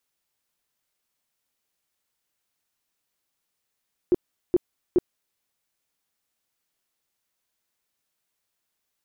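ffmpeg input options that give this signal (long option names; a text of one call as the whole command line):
ffmpeg -f lavfi -i "aevalsrc='0.2*sin(2*PI*356*mod(t,0.42))*lt(mod(t,0.42),9/356)':duration=1.26:sample_rate=44100" out.wav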